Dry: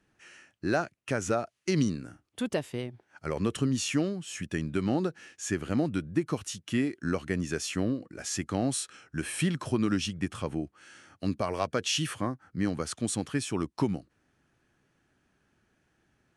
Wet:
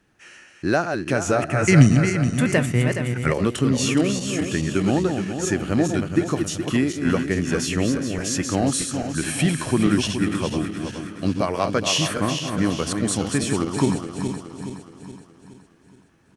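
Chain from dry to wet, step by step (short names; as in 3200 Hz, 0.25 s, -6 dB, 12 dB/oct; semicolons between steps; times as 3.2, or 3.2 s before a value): regenerating reverse delay 0.21 s, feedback 69%, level -6 dB; 1.42–3.33 graphic EQ 125/2000/4000/8000 Hz +12/+12/-8/+9 dB; echo 0.715 s -23 dB; gain +7 dB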